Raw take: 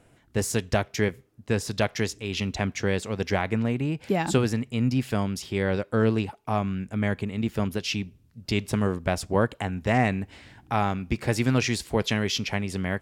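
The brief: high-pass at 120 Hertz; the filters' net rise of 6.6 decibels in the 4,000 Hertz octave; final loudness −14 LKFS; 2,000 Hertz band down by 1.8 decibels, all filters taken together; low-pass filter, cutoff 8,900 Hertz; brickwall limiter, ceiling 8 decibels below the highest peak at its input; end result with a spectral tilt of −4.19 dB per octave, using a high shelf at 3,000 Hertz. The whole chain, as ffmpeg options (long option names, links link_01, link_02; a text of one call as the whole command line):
ffmpeg -i in.wav -af "highpass=120,lowpass=8900,equalizer=frequency=2000:width_type=o:gain=-6,highshelf=frequency=3000:gain=3.5,equalizer=frequency=4000:width_type=o:gain=8,volume=14.5dB,alimiter=limit=-0.5dB:level=0:latency=1" out.wav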